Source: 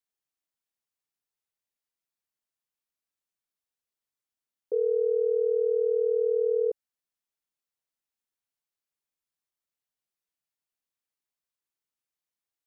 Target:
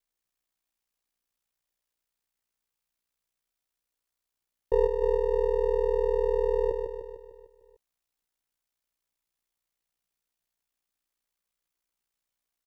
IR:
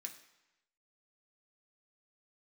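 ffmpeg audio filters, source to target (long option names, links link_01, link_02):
-af "aeval=exprs='if(lt(val(0),0),0.447*val(0),val(0))':channel_layout=same,aeval=exprs='val(0)*sin(2*PI*30*n/s)':channel_layout=same,aecho=1:1:150|300|450|600|750|900|1050:0.531|0.292|0.161|0.0883|0.0486|0.0267|0.0147,volume=8.5dB"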